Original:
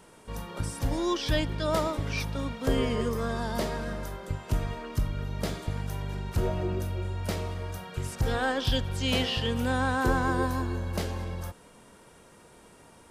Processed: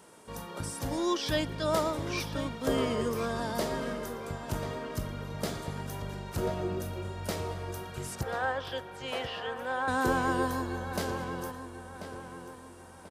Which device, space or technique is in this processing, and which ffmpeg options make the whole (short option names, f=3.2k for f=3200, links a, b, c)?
exciter from parts: -filter_complex "[0:a]asettb=1/sr,asplit=3[a][b][c];[a]atrim=end=8.234[d];[b]atrim=start=8.23:end=9.88,asetpts=PTS-STARTPTS,afade=t=in:d=0.004:c=qsin,afade=t=out:st=1.646:d=0.004:c=qsin,acrossover=split=430 2400:gain=0.0794 1 0.178[e][f][g];[e][f][g]amix=inputs=3:normalize=0[h];[c]atrim=start=9.876[i];[d][h]acrossfade=d=0.004:c1=hsin:c2=qsin[j];[j][i]acrossfade=d=0.004:c1=qsin:c2=hsin,highpass=f=190:p=1,equalizer=f=2.4k:w=1.5:g=-2.5,asplit=2[k][l];[l]highpass=4.4k,asoftclip=type=tanh:threshold=-35dB,volume=-13dB[m];[k][m]amix=inputs=2:normalize=0,asplit=2[n][o];[o]adelay=1038,lowpass=f=3.9k:p=1,volume=-10dB,asplit=2[p][q];[q]adelay=1038,lowpass=f=3.9k:p=1,volume=0.42,asplit=2[r][s];[s]adelay=1038,lowpass=f=3.9k:p=1,volume=0.42,asplit=2[t][u];[u]adelay=1038,lowpass=f=3.9k:p=1,volume=0.42[v];[n][p][r][t][v]amix=inputs=5:normalize=0"